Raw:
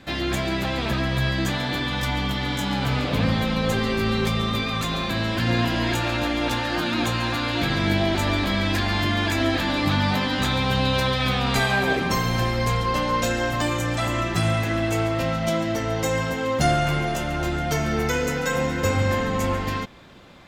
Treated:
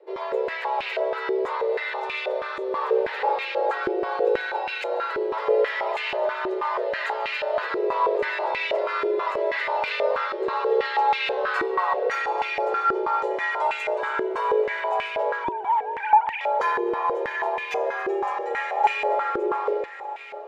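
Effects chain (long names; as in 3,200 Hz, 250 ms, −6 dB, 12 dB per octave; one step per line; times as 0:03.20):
0:15.44–0:16.41: three sine waves on the formant tracks
parametric band 560 Hz +6 dB 0.25 octaves
frequency shifter +320 Hz
feedback delay with all-pass diffusion 662 ms, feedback 45%, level −12 dB
band-pass on a step sequencer 6.2 Hz 360–2,400 Hz
level +5.5 dB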